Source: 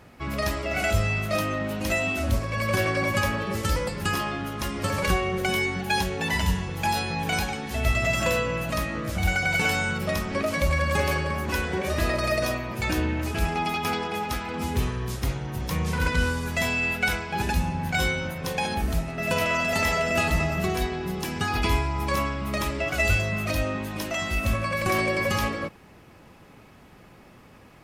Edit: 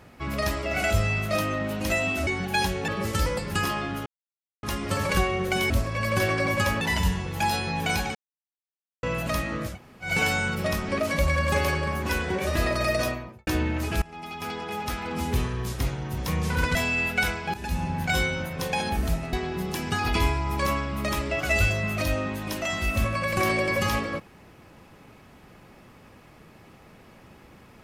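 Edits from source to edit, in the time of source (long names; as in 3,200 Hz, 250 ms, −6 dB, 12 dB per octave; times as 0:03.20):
0:02.27–0:03.38: swap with 0:05.63–0:06.24
0:04.56: splice in silence 0.57 s
0:07.58–0:08.46: silence
0:09.14–0:09.51: fill with room tone, crossfade 0.16 s
0:12.47–0:12.90: fade out and dull
0:13.45–0:14.50: fade in, from −22 dB
0:16.18–0:16.60: remove
0:17.39–0:17.72: fade in, from −16 dB
0:19.18–0:20.82: remove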